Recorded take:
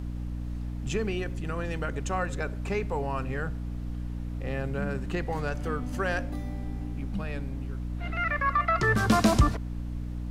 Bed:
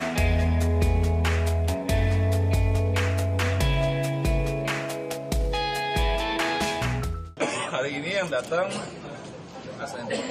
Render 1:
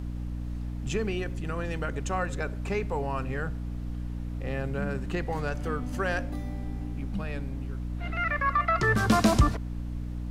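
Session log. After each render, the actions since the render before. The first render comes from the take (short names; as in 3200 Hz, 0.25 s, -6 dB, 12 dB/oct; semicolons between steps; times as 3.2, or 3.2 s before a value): nothing audible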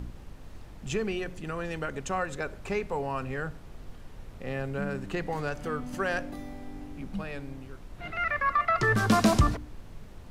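de-hum 60 Hz, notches 5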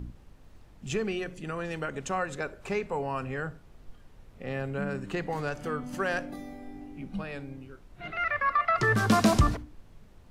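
noise print and reduce 8 dB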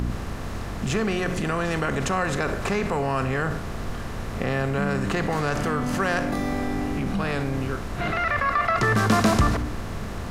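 per-bin compression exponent 0.6; in parallel at -2.5 dB: negative-ratio compressor -33 dBFS, ratio -1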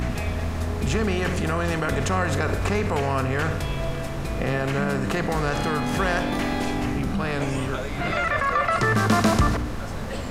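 add bed -6 dB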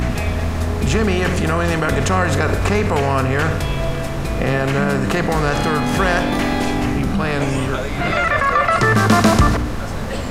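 gain +6.5 dB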